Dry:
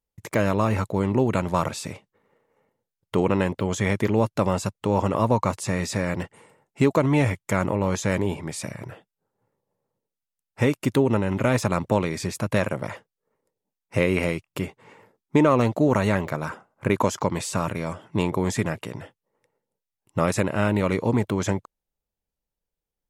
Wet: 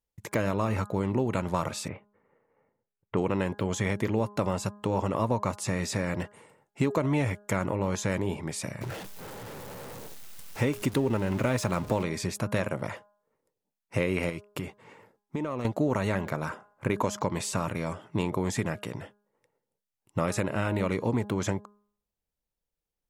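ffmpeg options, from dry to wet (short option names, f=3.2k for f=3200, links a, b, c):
-filter_complex "[0:a]asettb=1/sr,asplit=3[a][b][c];[a]atrim=end=1.884[d];[b]atrim=start=1.88:end=3.17,asetpts=PTS-STARTPTS,afade=t=in:d=0.004:c=qsin,afade=t=out:st=1.286:d=0.004:c=qsin,lowpass=f=2.4k:w=0.5412,lowpass=f=2.4k:w=1.3066[e];[c]atrim=start=3.166[f];[d][e]acrossfade=d=0.004:c1=hsin:c2=qsin[g];[g][f]acrossfade=d=0.004:c1=qsin:c2=hsin,asettb=1/sr,asplit=3[h][i][j];[h]atrim=end=8.814[k];[i]atrim=start=8.81:end=12.03,asetpts=PTS-STARTPTS,afade=t=in:d=0.004:c=qsin,afade=t=out:st=3.216:d=0.004:c=qsin,aeval=exprs='val(0)+0.5*0.0224*sgn(val(0))':c=same[l];[j]atrim=start=12.026[m];[k][l]acrossfade=d=0.004:c1=hsin:c2=qsin[n];[n][m]acrossfade=d=0.004:c1=qsin:c2=hsin,asettb=1/sr,asplit=3[o][p][q];[o]atrim=end=14.294[r];[p]atrim=start=14.29:end=15.65,asetpts=PTS-STARTPTS,afade=t=in:d=0.004:c=qsin,afade=t=out:st=1.356:d=0.004:c=qsin,acompressor=threshold=-26dB:ratio=6:attack=3.2:release=140:knee=1:detection=peak[s];[q]atrim=start=15.646[t];[r][s]acrossfade=d=0.004:c1=hsin:c2=qsin[u];[u][t]acrossfade=d=0.004:c1=qsin:c2=hsin,bandreject=f=206:t=h:w=4,bandreject=f=412:t=h:w=4,bandreject=f=618:t=h:w=4,bandreject=f=824:t=h:w=4,bandreject=f=1.03k:t=h:w=4,bandreject=f=1.236k:t=h:w=4,bandreject=f=1.442k:t=h:w=4,bandreject=f=1.648k:t=h:w=4,acompressor=threshold=-23dB:ratio=2,volume=-2dB"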